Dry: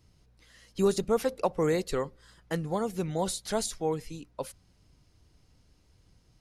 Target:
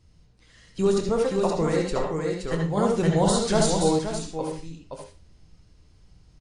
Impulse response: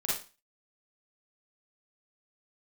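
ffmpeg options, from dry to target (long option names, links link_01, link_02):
-filter_complex "[0:a]aecho=1:1:522:0.631,asplit=2[link_01][link_02];[1:a]atrim=start_sample=2205,lowpass=6400,adelay=25[link_03];[link_02][link_03]afir=irnorm=-1:irlink=0,volume=-7dB[link_04];[link_01][link_04]amix=inputs=2:normalize=0,asettb=1/sr,asplit=3[link_05][link_06][link_07];[link_05]atrim=end=2.774[link_08];[link_06]atrim=start=2.77:end=3.99,asetpts=PTS-STARTPTS,afade=type=in:duration=0.004:curve=qsin,afade=type=out:start_time=1.216:duration=0.004:curve=qsin,acontrast=37[link_09];[link_07]atrim=start=3.986[link_10];[link_08][link_09]acrossfade=duration=0.004:curve1=hsin:curve2=qsin[link_11];[link_11][link_10]acrossfade=duration=0.004:curve1=qsin:curve2=hsin,lowshelf=frequency=100:gain=7.5" -ar 22050 -c:a wmav2 -b:a 64k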